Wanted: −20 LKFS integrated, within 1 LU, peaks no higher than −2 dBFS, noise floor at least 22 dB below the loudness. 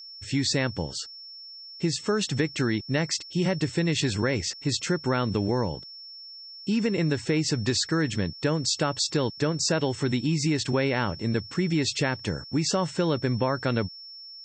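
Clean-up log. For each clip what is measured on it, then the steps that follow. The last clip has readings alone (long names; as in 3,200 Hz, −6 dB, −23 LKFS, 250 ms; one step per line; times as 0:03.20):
interfering tone 5,400 Hz; level of the tone −41 dBFS; integrated loudness −26.5 LKFS; sample peak −11.5 dBFS; target loudness −20.0 LKFS
→ notch filter 5,400 Hz, Q 30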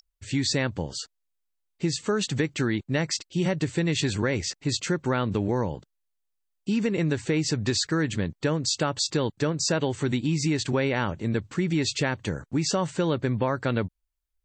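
interfering tone none found; integrated loudness −27.0 LKFS; sample peak −11.5 dBFS; target loudness −20.0 LKFS
→ level +7 dB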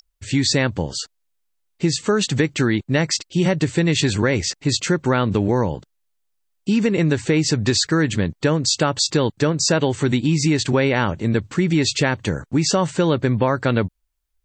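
integrated loudness −20.0 LKFS; sample peak −4.5 dBFS; background noise floor −71 dBFS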